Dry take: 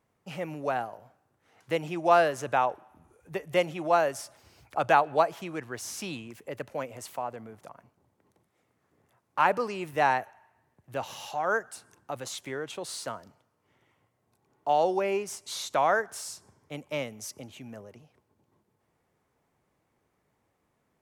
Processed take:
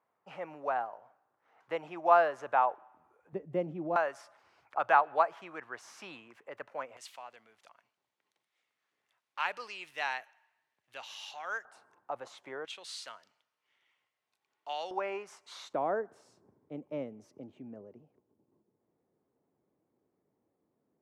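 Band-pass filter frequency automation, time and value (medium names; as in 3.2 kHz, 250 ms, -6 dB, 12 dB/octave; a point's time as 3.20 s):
band-pass filter, Q 1.2
1 kHz
from 3.33 s 240 Hz
from 3.96 s 1.2 kHz
from 6.97 s 3.3 kHz
from 11.65 s 880 Hz
from 12.65 s 3.1 kHz
from 14.91 s 1.2 kHz
from 15.73 s 320 Hz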